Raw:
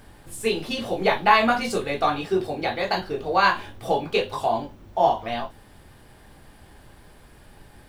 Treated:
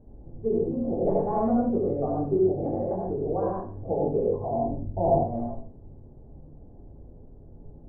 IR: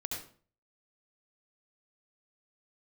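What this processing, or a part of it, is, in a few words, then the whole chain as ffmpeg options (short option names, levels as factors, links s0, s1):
next room: -filter_complex "[0:a]asettb=1/sr,asplit=3[s0][s1][s2];[s0]atrim=end=4.654[s3];[s1]atrim=start=4.65:end=5.16,asetpts=PTS-STARTPTS,afade=t=in:d=0.004:c=qsin,afade=t=out:st=0.506:d=0.004:c=qsin,lowshelf=f=240:g=10[s4];[s2]atrim=start=5.156[s5];[s3][s4]acrossfade=d=0.004:c1=hsin:c2=qsin[s6];[s6][s5]acrossfade=d=0.004:c1=qsin:c2=hsin,lowpass=f=590:w=0.5412,lowpass=f=590:w=1.3066[s7];[1:a]atrim=start_sample=2205[s8];[s7][s8]afir=irnorm=-1:irlink=0"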